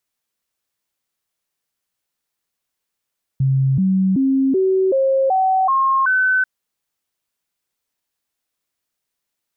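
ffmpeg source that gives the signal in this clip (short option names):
-f lavfi -i "aevalsrc='0.224*clip(min(mod(t,0.38),0.38-mod(t,0.38))/0.005,0,1)*sin(2*PI*134*pow(2,floor(t/0.38)/2)*mod(t,0.38))':d=3.04:s=44100"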